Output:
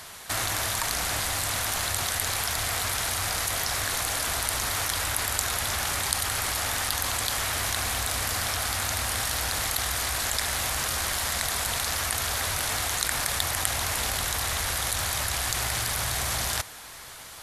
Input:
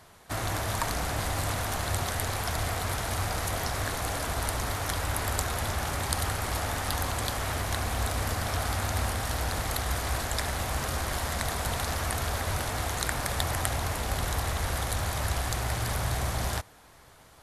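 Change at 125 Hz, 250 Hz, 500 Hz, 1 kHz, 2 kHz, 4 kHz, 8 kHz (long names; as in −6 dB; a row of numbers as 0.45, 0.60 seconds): −5.0, −4.5, −2.5, +0.5, +4.5, +7.0, +8.0 decibels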